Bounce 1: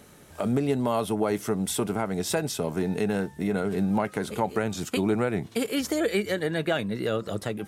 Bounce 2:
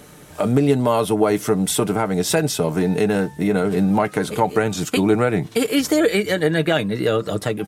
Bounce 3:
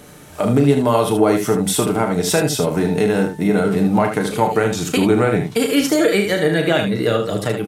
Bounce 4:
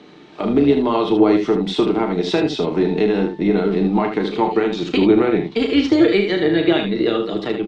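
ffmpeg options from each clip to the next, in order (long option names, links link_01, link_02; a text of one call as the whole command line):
ffmpeg -i in.wav -af "aecho=1:1:6.6:0.35,volume=7.5dB" out.wav
ffmpeg -i in.wav -af "aecho=1:1:34.99|75.8:0.398|0.447,volume=1dB" out.wav
ffmpeg -i in.wav -af "highpass=frequency=180:width=0.5412,highpass=frequency=180:width=1.3066,equalizer=frequency=350:width_type=q:width=4:gain=9,equalizer=frequency=560:width_type=q:width=4:gain=-8,equalizer=frequency=1500:width_type=q:width=4:gain=-6,equalizer=frequency=3900:width_type=q:width=4:gain=4,lowpass=frequency=4200:width=0.5412,lowpass=frequency=4200:width=1.3066,tremolo=f=210:d=0.261" out.wav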